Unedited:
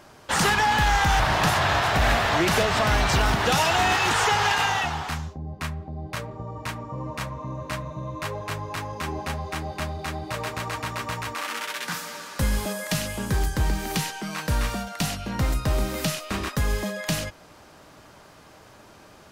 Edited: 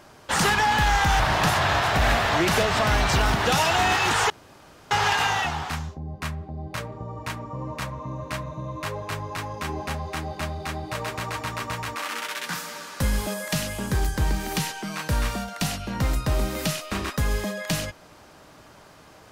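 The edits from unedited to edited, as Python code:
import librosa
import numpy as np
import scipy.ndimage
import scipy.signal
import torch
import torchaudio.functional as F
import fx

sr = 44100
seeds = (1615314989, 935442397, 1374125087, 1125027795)

y = fx.edit(x, sr, fx.insert_room_tone(at_s=4.3, length_s=0.61), tone=tone)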